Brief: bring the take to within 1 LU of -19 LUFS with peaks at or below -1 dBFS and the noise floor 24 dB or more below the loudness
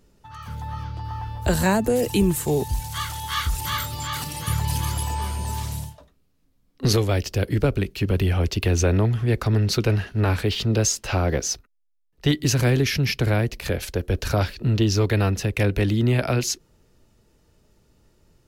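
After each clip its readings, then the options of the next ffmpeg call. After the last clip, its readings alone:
loudness -23.5 LUFS; peak level -9.0 dBFS; loudness target -19.0 LUFS
-> -af "volume=1.68"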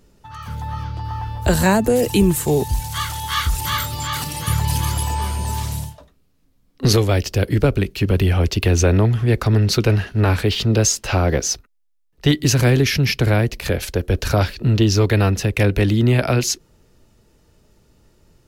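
loudness -19.0 LUFS; peak level -4.5 dBFS; noise floor -59 dBFS

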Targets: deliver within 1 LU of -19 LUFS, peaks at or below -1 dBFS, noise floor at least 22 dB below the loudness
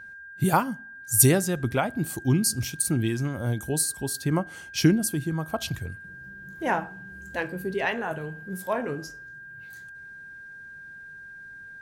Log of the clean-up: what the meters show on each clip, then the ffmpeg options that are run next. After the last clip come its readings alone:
steady tone 1.6 kHz; tone level -41 dBFS; loudness -26.0 LUFS; peak level -4.0 dBFS; loudness target -19.0 LUFS
-> -af "bandreject=f=1600:w=30"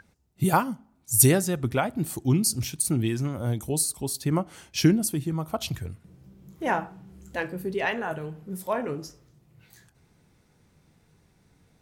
steady tone not found; loudness -26.0 LUFS; peak level -4.0 dBFS; loudness target -19.0 LUFS
-> -af "volume=2.24,alimiter=limit=0.891:level=0:latency=1"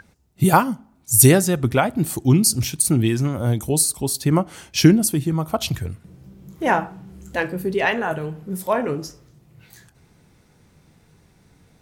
loudness -19.5 LUFS; peak level -1.0 dBFS; noise floor -58 dBFS

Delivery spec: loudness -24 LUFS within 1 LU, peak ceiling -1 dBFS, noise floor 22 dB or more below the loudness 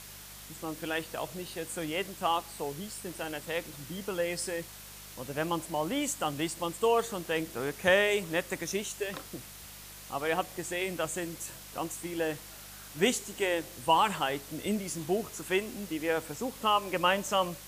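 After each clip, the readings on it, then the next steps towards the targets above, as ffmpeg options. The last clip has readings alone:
hum 50 Hz; highest harmonic 200 Hz; hum level -53 dBFS; noise floor -48 dBFS; noise floor target -54 dBFS; loudness -32.0 LUFS; peak level -11.5 dBFS; loudness target -24.0 LUFS
-> -af "bandreject=f=50:t=h:w=4,bandreject=f=100:t=h:w=4,bandreject=f=150:t=h:w=4,bandreject=f=200:t=h:w=4"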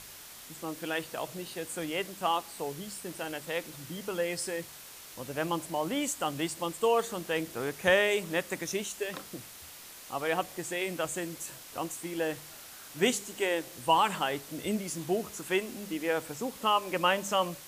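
hum not found; noise floor -48 dBFS; noise floor target -54 dBFS
-> -af "afftdn=nr=6:nf=-48"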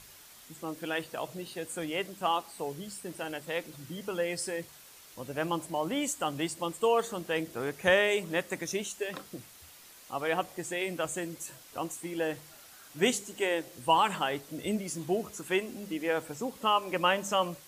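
noise floor -53 dBFS; noise floor target -54 dBFS
-> -af "afftdn=nr=6:nf=-53"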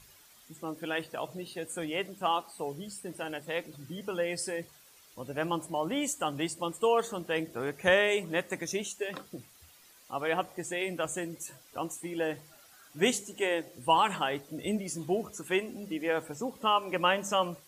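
noise floor -58 dBFS; loudness -32.0 LUFS; peak level -11.5 dBFS; loudness target -24.0 LUFS
-> -af "volume=2.51"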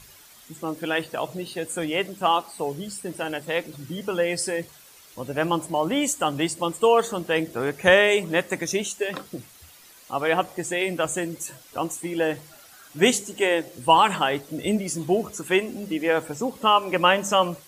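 loudness -24.0 LUFS; peak level -3.5 dBFS; noise floor -50 dBFS

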